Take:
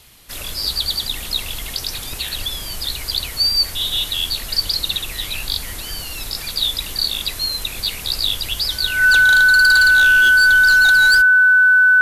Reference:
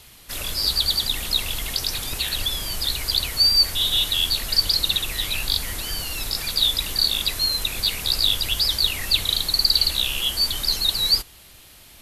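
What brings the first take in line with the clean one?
clipped peaks rebuilt −8 dBFS
notch filter 1,500 Hz, Q 30

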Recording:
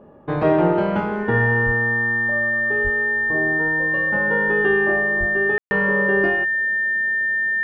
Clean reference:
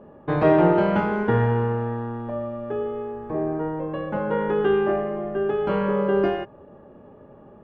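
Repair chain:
notch filter 1,800 Hz, Q 30
high-pass at the plosives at 0:01.65/0:02.83/0:05.19/0:05.61
ambience match 0:05.58–0:05.71

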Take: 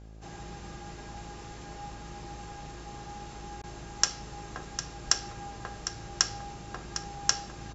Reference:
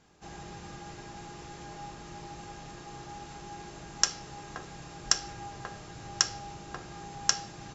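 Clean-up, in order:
hum removal 54.3 Hz, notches 15
repair the gap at 0:03.62, 15 ms
echo removal 754 ms −10.5 dB

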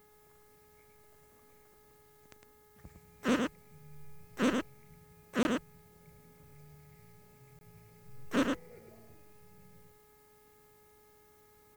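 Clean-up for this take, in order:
clipped peaks rebuilt −19 dBFS
hum removal 421.3 Hz, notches 5
repair the gap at 0:05.43/0:07.59, 21 ms
echo removal 107 ms −5 dB

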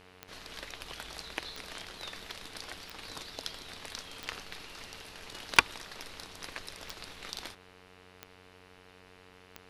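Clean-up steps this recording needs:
click removal
hum removal 92.5 Hz, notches 33
notch filter 450 Hz, Q 30

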